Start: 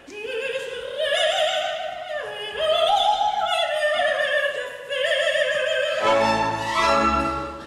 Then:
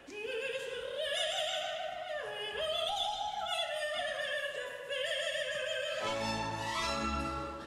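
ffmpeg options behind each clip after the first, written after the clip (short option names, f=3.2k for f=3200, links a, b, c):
-filter_complex "[0:a]acrossover=split=220|3000[a][b][c];[b]acompressor=threshold=-27dB:ratio=6[d];[a][d][c]amix=inputs=3:normalize=0,volume=-8dB"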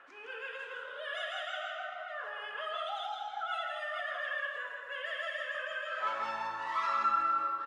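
-af "bandpass=f=1.3k:t=q:w=3.6:csg=0,aecho=1:1:162:0.531,volume=8.5dB"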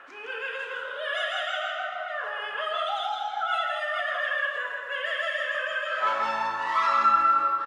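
-filter_complex "[0:a]asplit=2[a][b];[b]adelay=32,volume=-12dB[c];[a][c]amix=inputs=2:normalize=0,volume=8.5dB"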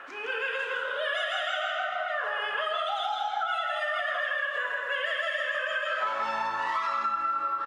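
-af "acompressor=threshold=-30dB:ratio=10,volume=4dB"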